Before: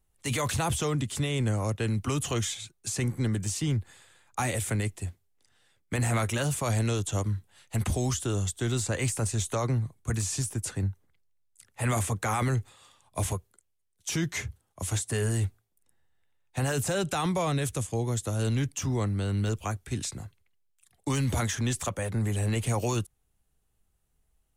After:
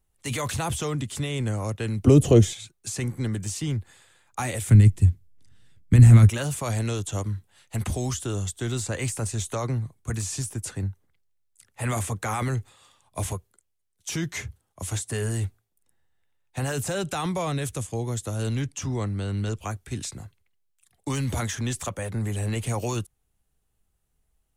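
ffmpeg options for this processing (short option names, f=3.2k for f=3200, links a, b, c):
-filter_complex "[0:a]asettb=1/sr,asplit=3[a][b][c];[a]atrim=end=2.044[d];[b]atrim=start=2.04:end=2.53,asetpts=PTS-STARTPTS,afade=t=in:d=0.004:c=qsin,afade=t=out:st=0.486:d=0.004:c=qsin,lowshelf=f=750:t=q:w=1.5:g=13.5[e];[c]atrim=start=2.526[f];[d][e]acrossfade=d=0.004:c1=hsin:c2=qsin[g];[g][f]acrossfade=d=0.004:c1=qsin:c2=hsin,asplit=3[h][i][j];[h]afade=t=out:st=4.69:d=0.02[k];[i]asubboost=boost=11:cutoff=210,afade=t=in:st=4.69:d=0.02,afade=t=out:st=6.28:d=0.02[l];[j]afade=t=in:st=6.28:d=0.02[m];[k][l][m]amix=inputs=3:normalize=0,asettb=1/sr,asplit=3[n][o][p];[n]atrim=end=18.614[q];[o]atrim=start=18.61:end=19.61,asetpts=PTS-STARTPTS,afade=t=in:d=0.004:c=qsin,afade=t=out:st=0.996:d=0.004:c=qsin,lowpass=9.9k[r];[p]atrim=start=19.606[s];[q][r]acrossfade=d=0.004:c1=hsin:c2=qsin[t];[t][s]acrossfade=d=0.004:c1=qsin:c2=hsin"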